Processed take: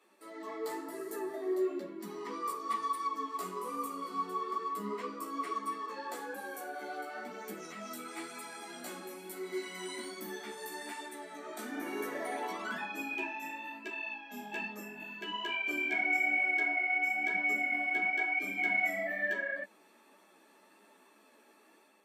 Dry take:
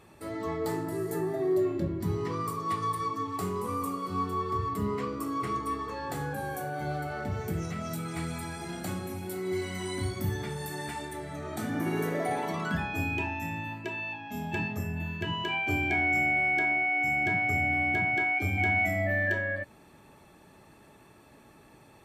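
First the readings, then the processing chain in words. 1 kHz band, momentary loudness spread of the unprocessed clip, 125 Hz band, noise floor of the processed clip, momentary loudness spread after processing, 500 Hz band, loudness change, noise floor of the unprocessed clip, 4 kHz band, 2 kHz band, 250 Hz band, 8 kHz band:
-5.0 dB, 11 LU, under -25 dB, -63 dBFS, 15 LU, -6.5 dB, -4.5 dB, -56 dBFS, -3.5 dB, -3.5 dB, -9.0 dB, -3.5 dB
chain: steep high-pass 200 Hz 72 dB/oct; low shelf 320 Hz -8.5 dB; notch 780 Hz, Q 12; AGC gain up to 5 dB; chorus voices 2, 1 Hz, delay 13 ms, depth 3.2 ms; gain -5.5 dB

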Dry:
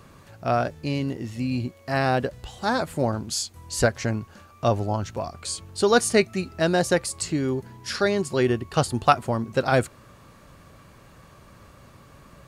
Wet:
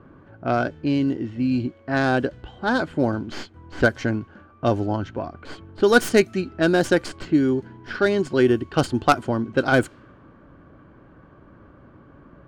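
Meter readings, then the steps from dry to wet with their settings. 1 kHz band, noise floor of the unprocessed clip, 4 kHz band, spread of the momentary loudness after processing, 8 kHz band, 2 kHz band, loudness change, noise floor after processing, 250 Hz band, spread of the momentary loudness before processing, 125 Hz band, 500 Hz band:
0.0 dB, -51 dBFS, -1.5 dB, 13 LU, -8.0 dB, +4.5 dB, +2.5 dB, -51 dBFS, +5.5 dB, 10 LU, 0.0 dB, +2.0 dB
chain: tracing distortion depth 0.091 ms; small resonant body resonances 300/1500/3100 Hz, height 10 dB, ringing for 25 ms; low-pass opened by the level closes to 1300 Hz, open at -12.5 dBFS; gain -1 dB

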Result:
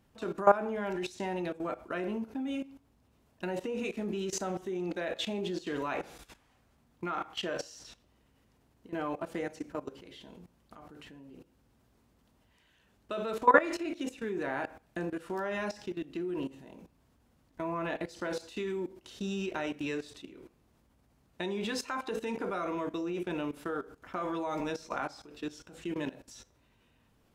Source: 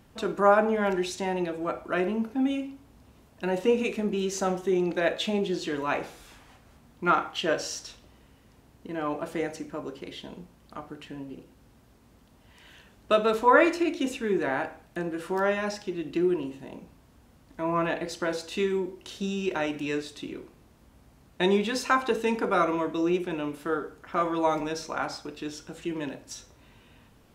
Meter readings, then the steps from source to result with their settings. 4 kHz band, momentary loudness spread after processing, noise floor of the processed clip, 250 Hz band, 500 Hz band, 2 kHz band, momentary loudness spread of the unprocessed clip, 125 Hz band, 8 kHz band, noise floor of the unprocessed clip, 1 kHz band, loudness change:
-6.5 dB, 15 LU, -69 dBFS, -7.0 dB, -7.0 dB, -6.5 dB, 16 LU, -6.5 dB, -6.0 dB, -58 dBFS, -6.0 dB, -6.5 dB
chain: level quantiser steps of 17 dB

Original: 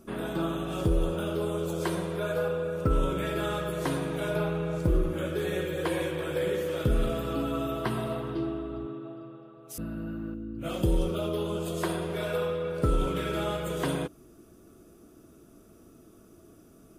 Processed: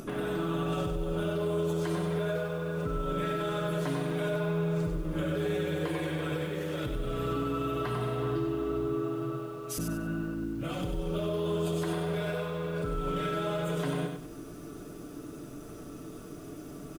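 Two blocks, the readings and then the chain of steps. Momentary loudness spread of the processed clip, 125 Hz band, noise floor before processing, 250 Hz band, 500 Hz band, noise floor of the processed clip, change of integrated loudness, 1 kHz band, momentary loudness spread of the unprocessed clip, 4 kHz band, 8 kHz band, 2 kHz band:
13 LU, -0.5 dB, -55 dBFS, -1.0 dB, -1.5 dB, -44 dBFS, -1.5 dB, -1.0 dB, 9 LU, -2.0 dB, -1.5 dB, -1.5 dB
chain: high shelf 10000 Hz -9 dB; in parallel at -8 dB: hard clip -32 dBFS, distortion -5 dB; on the sum: compressor, threshold -35 dBFS, peak gain reduction 15 dB; limiter -32.5 dBFS, peak gain reduction 8 dB; comb 6.8 ms, depth 55%; upward compressor, threshold -45 dBFS; lo-fi delay 96 ms, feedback 35%, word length 10-bit, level -5.5 dB; gain +5.5 dB

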